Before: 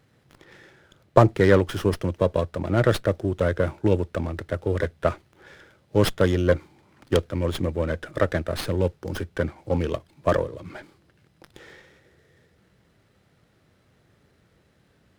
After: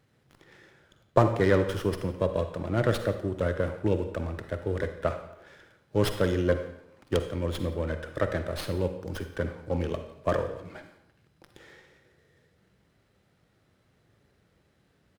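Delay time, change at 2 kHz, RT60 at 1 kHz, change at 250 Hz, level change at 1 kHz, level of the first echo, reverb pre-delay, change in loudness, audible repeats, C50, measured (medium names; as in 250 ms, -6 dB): 173 ms, -5.0 dB, 0.80 s, -5.0 dB, -4.5 dB, -22.0 dB, 40 ms, -5.0 dB, 1, 8.5 dB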